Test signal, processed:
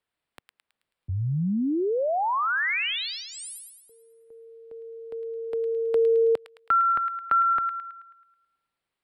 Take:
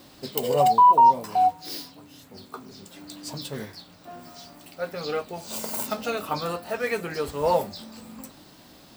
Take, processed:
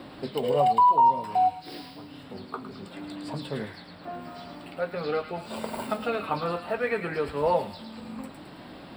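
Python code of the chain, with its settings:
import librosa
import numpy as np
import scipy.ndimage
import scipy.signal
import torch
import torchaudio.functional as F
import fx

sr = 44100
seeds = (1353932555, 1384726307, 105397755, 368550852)

y = np.convolve(x, np.full(7, 1.0 / 7))[:len(x)]
y = fx.echo_wet_highpass(y, sr, ms=108, feedback_pct=42, hz=1800.0, wet_db=-5)
y = fx.band_squash(y, sr, depth_pct=40)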